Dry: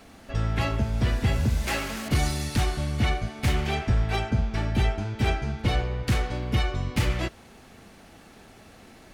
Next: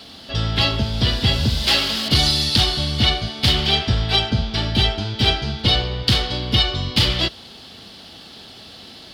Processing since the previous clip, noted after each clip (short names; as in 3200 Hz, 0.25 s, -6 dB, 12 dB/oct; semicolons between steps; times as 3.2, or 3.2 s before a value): HPF 60 Hz; band shelf 3900 Hz +15.5 dB 1 oct; gain +5 dB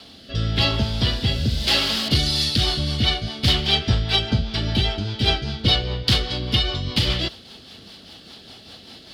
rotary speaker horn 0.9 Hz, later 5 Hz, at 1.91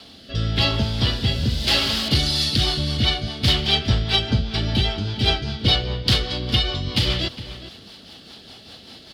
outdoor echo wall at 70 m, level -13 dB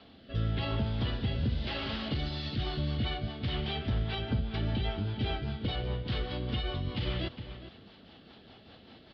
limiter -13.5 dBFS, peak gain reduction 9 dB; Gaussian blur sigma 2.8 samples; gain -7 dB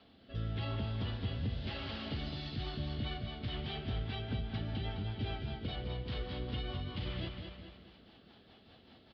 feedback echo 0.21 s, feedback 38%, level -6.5 dB; gain -7 dB